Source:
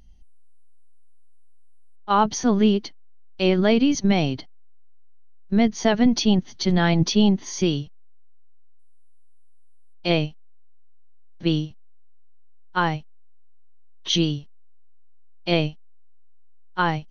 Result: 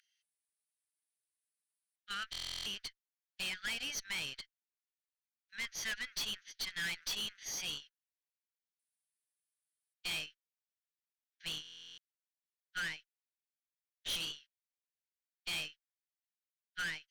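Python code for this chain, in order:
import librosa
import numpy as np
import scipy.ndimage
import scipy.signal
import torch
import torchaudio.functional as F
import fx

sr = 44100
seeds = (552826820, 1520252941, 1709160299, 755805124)

y = fx.octave_divider(x, sr, octaves=1, level_db=2.0)
y = scipy.signal.sosfilt(scipy.signal.butter(12, 1500.0, 'highpass', fs=sr, output='sos'), y)
y = fx.high_shelf(y, sr, hz=3100.0, db=-6.0)
y = fx.tube_stage(y, sr, drive_db=36.0, bias=0.6)
y = fx.buffer_glitch(y, sr, at_s=(2.31, 11.63), block=1024, repeats=14)
y = y * 10.0 ** (1.5 / 20.0)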